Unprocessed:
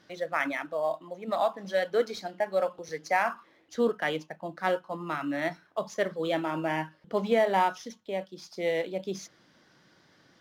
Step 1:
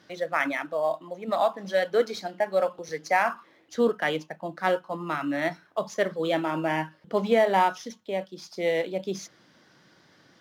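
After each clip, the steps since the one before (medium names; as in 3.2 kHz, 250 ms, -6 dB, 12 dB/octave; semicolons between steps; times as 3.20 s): high-pass 68 Hz; trim +3 dB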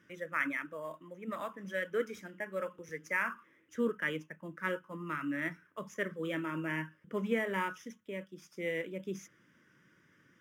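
static phaser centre 1.8 kHz, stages 4; trim -5 dB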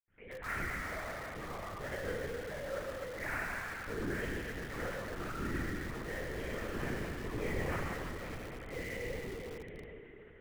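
reverberation RT60 3.4 s, pre-delay 77 ms; LPC vocoder at 8 kHz whisper; in parallel at -8.5 dB: integer overflow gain 52 dB; on the sum: trim +11 dB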